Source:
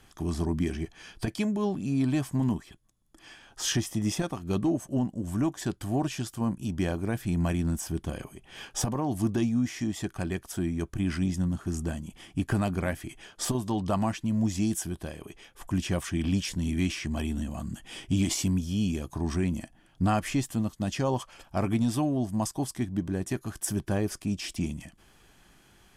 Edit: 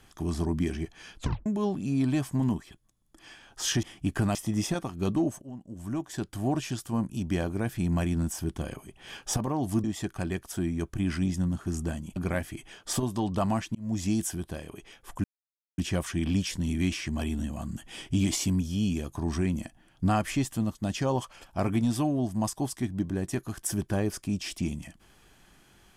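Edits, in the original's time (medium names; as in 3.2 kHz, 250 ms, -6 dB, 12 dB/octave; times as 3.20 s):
1.16 s: tape stop 0.30 s
4.90–5.97 s: fade in, from -19 dB
9.32–9.84 s: delete
12.16–12.68 s: move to 3.83 s
14.27–14.54 s: fade in
15.76 s: insert silence 0.54 s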